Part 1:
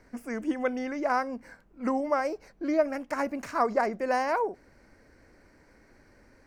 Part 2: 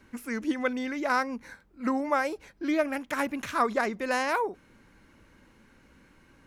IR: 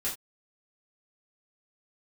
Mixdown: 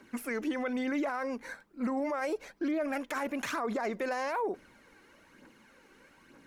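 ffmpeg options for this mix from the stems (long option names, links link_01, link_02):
-filter_complex "[0:a]agate=range=-33dB:threshold=-50dB:ratio=3:detection=peak,volume=-5dB,asplit=2[link_01][link_02];[1:a]highpass=240,aphaser=in_gain=1:out_gain=1:delay=2.7:decay=0.5:speed=1.1:type=triangular,volume=0.5dB[link_03];[link_02]apad=whole_len=285125[link_04];[link_03][link_04]sidechaincompress=threshold=-35dB:ratio=8:attack=7.8:release=118[link_05];[link_01][link_05]amix=inputs=2:normalize=0,alimiter=level_in=1dB:limit=-24dB:level=0:latency=1:release=21,volume=-1dB"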